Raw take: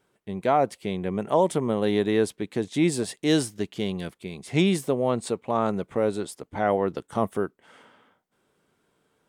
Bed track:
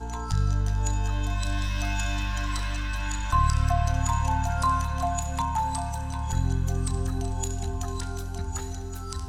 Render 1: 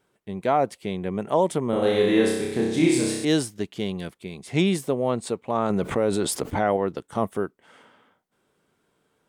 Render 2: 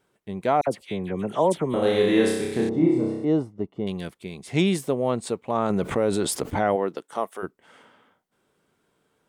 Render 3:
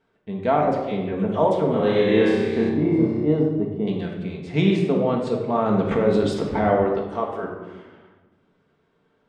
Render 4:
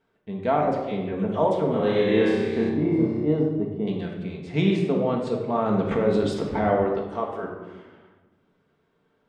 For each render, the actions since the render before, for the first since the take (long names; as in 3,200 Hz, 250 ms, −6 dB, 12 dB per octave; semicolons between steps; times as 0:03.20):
0:01.70–0:03.25: flutter between parallel walls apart 5.3 metres, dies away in 1 s; 0:05.70–0:06.77: envelope flattener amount 70%
0:00.61–0:01.74: all-pass dispersion lows, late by 63 ms, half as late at 2,000 Hz; 0:02.69–0:03.87: Savitzky-Golay smoothing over 65 samples; 0:06.75–0:07.42: high-pass filter 170 Hz → 710 Hz
high-frequency loss of the air 160 metres; rectangular room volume 760 cubic metres, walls mixed, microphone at 1.6 metres
level −2.5 dB